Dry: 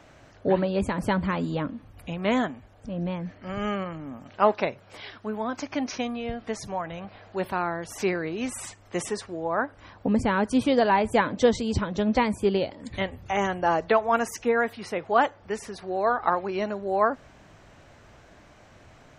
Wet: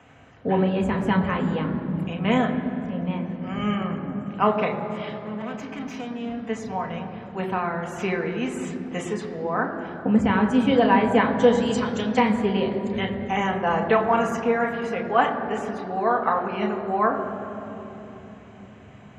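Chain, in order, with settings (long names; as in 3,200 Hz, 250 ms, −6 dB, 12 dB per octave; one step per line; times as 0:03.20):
0:05.09–0:06.41: tube saturation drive 33 dB, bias 0.4
0:11.62–0:12.19: RIAA equalisation recording
convolution reverb RT60 3.6 s, pre-delay 3 ms, DRR 1.5 dB
level −7 dB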